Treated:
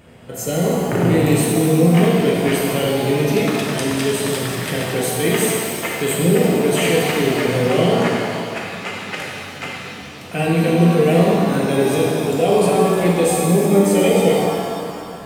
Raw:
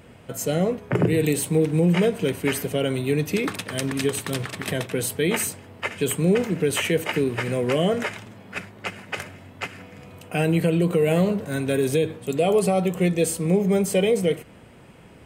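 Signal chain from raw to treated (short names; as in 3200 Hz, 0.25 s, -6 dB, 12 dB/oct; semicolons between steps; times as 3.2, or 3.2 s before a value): shimmer reverb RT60 2.4 s, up +7 st, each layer -8 dB, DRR -4 dB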